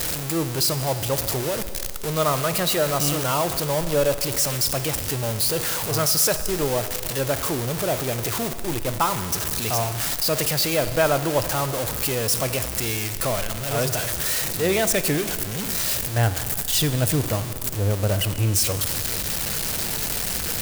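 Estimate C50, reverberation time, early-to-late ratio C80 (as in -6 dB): 11.5 dB, 2.3 s, 12.5 dB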